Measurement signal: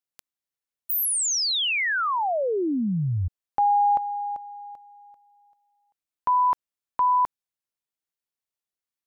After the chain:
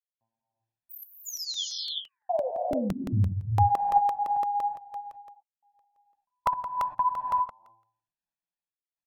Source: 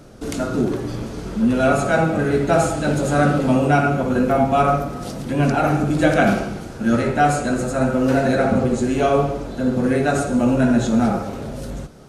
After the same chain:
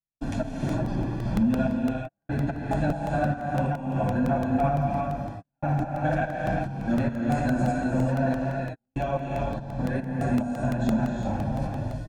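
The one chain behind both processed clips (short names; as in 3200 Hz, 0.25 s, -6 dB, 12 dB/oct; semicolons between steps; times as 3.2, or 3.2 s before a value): LPF 1200 Hz 6 dB/oct; comb 1.2 ms, depth 82%; de-hum 113.3 Hz, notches 9; limiter -13 dBFS; compressor 3:1, threshold -22 dBFS; step gate ".x.xx.xx...x.x.x" 72 bpm -60 dB; flange 1.1 Hz, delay 4.8 ms, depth 5.2 ms, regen -11%; non-linear reverb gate 0.42 s rising, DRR 0 dB; crackling interface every 0.17 s, samples 64, repeat, from 0.69; gain +2 dB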